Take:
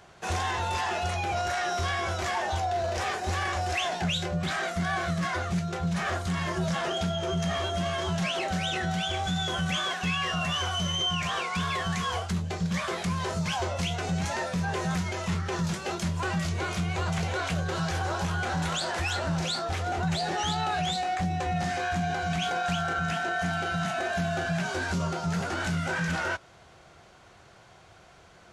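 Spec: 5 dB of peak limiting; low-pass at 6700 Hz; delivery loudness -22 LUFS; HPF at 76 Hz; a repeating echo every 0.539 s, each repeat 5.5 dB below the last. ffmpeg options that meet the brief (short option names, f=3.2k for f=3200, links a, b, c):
-af "highpass=76,lowpass=6.7k,alimiter=limit=-22dB:level=0:latency=1,aecho=1:1:539|1078|1617|2156|2695|3234|3773:0.531|0.281|0.149|0.079|0.0419|0.0222|0.0118,volume=7.5dB"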